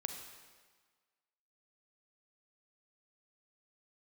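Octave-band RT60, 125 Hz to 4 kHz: 1.4, 1.4, 1.4, 1.6, 1.4, 1.4 seconds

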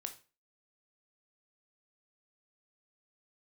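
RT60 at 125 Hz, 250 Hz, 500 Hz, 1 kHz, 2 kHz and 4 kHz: 0.35, 0.35, 0.35, 0.35, 0.35, 0.30 seconds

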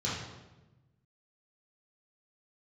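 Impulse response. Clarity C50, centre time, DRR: 0.5 dB, 68 ms, −8.0 dB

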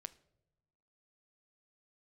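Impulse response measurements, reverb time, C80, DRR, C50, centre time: non-exponential decay, 23.0 dB, 13.5 dB, 19.0 dB, 2 ms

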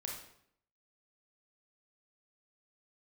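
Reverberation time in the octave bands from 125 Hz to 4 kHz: 0.75, 0.75, 0.70, 0.65, 0.60, 0.55 seconds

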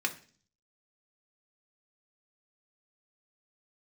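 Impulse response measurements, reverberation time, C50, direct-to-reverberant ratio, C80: 0.45 s, 15.0 dB, 3.0 dB, 19.5 dB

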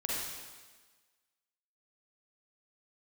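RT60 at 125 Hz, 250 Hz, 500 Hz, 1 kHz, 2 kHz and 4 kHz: 1.2, 1.3, 1.4, 1.4, 1.4, 1.4 seconds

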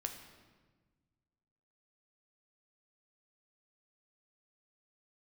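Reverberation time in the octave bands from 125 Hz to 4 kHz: 2.1, 1.9, 1.5, 1.3, 1.2, 1.0 seconds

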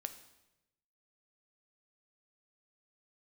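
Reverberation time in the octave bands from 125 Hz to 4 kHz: 1.3, 1.1, 1.0, 0.90, 0.90, 0.85 seconds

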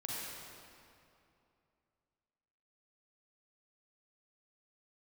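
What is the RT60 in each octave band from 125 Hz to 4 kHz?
3.0, 2.9, 2.7, 2.6, 2.2, 1.9 seconds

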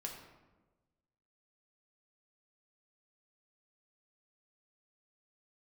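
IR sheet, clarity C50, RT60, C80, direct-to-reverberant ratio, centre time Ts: 5.0 dB, 1.2 s, 7.0 dB, 0.0 dB, 38 ms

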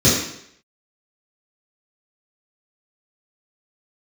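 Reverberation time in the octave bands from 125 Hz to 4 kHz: 0.65, 0.65, 0.70, 0.70, 0.70, 0.70 seconds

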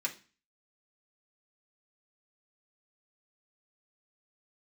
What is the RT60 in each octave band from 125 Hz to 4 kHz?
0.45, 0.45, 0.35, 0.35, 0.40, 0.40 seconds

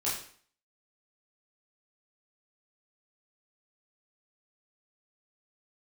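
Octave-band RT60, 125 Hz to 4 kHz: 0.50, 0.55, 0.50, 0.50, 0.50, 0.50 seconds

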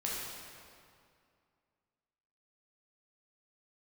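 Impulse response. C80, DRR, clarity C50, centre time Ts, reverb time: 0.5 dB, −5.5 dB, −1.5 dB, 126 ms, 2.3 s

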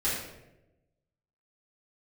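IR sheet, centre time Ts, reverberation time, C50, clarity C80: 61 ms, 0.95 s, 1.0 dB, 4.5 dB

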